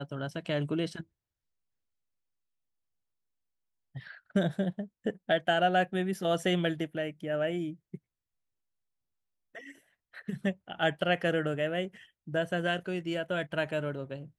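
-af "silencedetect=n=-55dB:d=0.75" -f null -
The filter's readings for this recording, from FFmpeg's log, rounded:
silence_start: 1.04
silence_end: 3.95 | silence_duration: 2.91
silence_start: 7.98
silence_end: 9.55 | silence_duration: 1.57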